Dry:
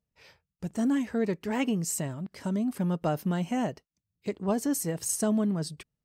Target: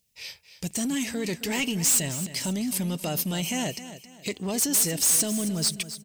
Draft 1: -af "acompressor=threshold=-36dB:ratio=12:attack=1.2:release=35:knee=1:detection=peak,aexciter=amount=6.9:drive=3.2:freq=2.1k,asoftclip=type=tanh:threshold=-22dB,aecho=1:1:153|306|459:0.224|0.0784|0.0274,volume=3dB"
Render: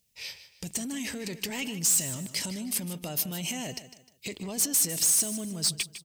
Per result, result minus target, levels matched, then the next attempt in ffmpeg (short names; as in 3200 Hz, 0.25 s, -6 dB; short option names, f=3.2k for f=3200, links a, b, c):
echo 0.114 s early; compressor: peak gain reduction +8 dB
-af "acompressor=threshold=-36dB:ratio=12:attack=1.2:release=35:knee=1:detection=peak,aexciter=amount=6.9:drive=3.2:freq=2.1k,asoftclip=type=tanh:threshold=-22dB,aecho=1:1:267|534|801:0.224|0.0784|0.0274,volume=3dB"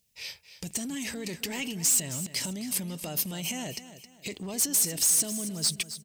compressor: peak gain reduction +8 dB
-af "acompressor=threshold=-27dB:ratio=12:attack=1.2:release=35:knee=1:detection=peak,aexciter=amount=6.9:drive=3.2:freq=2.1k,asoftclip=type=tanh:threshold=-22dB,aecho=1:1:267|534|801:0.224|0.0784|0.0274,volume=3dB"